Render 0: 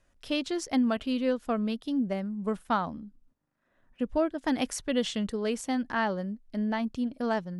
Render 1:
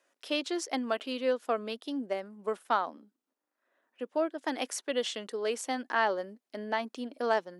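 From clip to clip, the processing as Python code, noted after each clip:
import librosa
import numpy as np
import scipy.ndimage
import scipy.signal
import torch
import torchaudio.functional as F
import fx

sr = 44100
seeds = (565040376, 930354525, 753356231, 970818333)

y = scipy.signal.sosfilt(scipy.signal.butter(4, 330.0, 'highpass', fs=sr, output='sos'), x)
y = fx.rider(y, sr, range_db=10, speed_s=2.0)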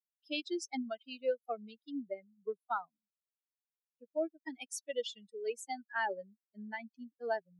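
y = fx.bin_expand(x, sr, power=3.0)
y = fx.peak_eq(y, sr, hz=1100.0, db=-10.0, octaves=0.26)
y = F.gain(torch.from_numpy(y), -1.0).numpy()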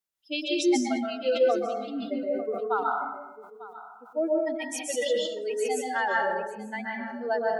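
y = x + 10.0 ** (-16.5 / 20.0) * np.pad(x, (int(897 * sr / 1000.0), 0))[:len(x)]
y = fx.rev_plate(y, sr, seeds[0], rt60_s=0.93, hf_ratio=0.5, predelay_ms=115, drr_db=-2.5)
y = fx.sustainer(y, sr, db_per_s=61.0)
y = F.gain(torch.from_numpy(y), 5.5).numpy()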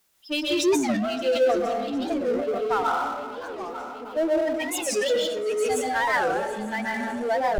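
y = fx.echo_swing(x, sr, ms=761, ratio=3, feedback_pct=70, wet_db=-23)
y = fx.power_curve(y, sr, exponent=0.7)
y = fx.record_warp(y, sr, rpm=45.0, depth_cents=250.0)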